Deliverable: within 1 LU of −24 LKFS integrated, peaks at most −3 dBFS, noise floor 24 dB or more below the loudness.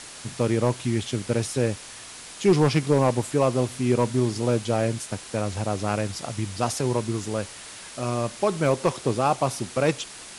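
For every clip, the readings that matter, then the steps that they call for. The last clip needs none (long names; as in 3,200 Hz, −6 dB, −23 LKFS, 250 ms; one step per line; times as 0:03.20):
share of clipped samples 0.3%; peaks flattened at −11.0 dBFS; background noise floor −42 dBFS; target noise floor −49 dBFS; integrated loudness −25.0 LKFS; sample peak −11.0 dBFS; target loudness −24.0 LKFS
→ clipped peaks rebuilt −11 dBFS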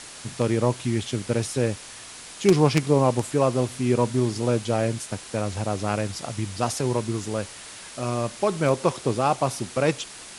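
share of clipped samples 0.0%; background noise floor −42 dBFS; target noise floor −49 dBFS
→ broadband denoise 7 dB, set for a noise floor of −42 dBFS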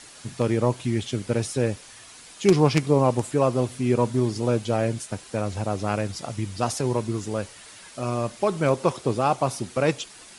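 background noise floor −46 dBFS; target noise floor −49 dBFS
→ broadband denoise 6 dB, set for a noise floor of −46 dBFS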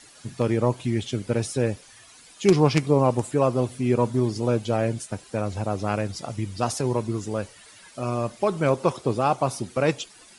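background noise floor −50 dBFS; integrated loudness −25.0 LKFS; sample peak −2.0 dBFS; target loudness −24.0 LKFS
→ level +1 dB
brickwall limiter −3 dBFS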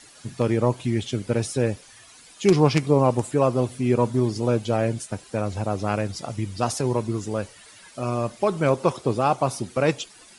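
integrated loudness −24.0 LKFS; sample peak −3.0 dBFS; background noise floor −49 dBFS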